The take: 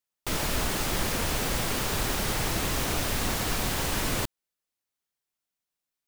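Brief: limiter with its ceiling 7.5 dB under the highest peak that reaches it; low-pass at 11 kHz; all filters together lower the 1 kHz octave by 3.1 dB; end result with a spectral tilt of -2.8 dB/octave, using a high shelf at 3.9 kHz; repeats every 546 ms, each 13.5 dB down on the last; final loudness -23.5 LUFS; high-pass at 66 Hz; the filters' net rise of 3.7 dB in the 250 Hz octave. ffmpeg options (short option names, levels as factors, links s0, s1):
-af "highpass=66,lowpass=11000,equalizer=f=250:t=o:g=5,equalizer=f=1000:t=o:g=-5,highshelf=f=3900:g=8,alimiter=limit=0.0794:level=0:latency=1,aecho=1:1:546|1092:0.211|0.0444,volume=2.11"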